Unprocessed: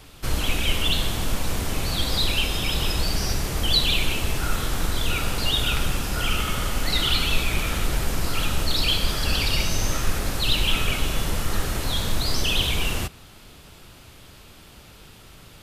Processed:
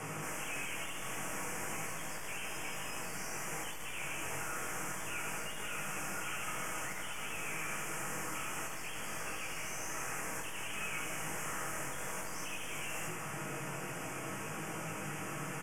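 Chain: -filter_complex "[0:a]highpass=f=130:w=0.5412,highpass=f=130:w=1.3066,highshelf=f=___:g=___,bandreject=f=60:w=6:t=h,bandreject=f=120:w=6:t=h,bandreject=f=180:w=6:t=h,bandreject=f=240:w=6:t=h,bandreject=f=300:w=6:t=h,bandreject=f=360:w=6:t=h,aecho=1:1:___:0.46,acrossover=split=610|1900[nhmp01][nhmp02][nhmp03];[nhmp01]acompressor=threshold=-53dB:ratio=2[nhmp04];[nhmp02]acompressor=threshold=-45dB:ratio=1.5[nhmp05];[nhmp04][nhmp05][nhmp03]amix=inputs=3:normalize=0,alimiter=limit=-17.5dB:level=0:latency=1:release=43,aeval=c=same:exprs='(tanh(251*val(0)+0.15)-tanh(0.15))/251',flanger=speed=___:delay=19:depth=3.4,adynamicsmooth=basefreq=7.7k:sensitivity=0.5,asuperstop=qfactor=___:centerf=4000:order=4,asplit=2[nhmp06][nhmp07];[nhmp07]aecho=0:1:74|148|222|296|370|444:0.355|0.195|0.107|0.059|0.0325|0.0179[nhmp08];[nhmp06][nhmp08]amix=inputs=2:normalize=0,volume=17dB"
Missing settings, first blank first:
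4.8k, 6, 6.3, 0.54, 0.97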